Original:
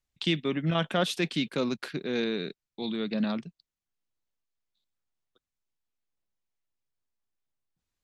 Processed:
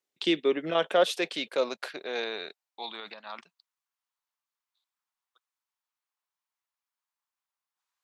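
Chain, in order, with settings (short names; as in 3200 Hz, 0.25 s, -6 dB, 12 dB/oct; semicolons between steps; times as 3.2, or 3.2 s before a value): 3–3.41 negative-ratio compressor -35 dBFS, ratio -1; high-pass sweep 380 Hz -> 1000 Hz, 0.18–3.5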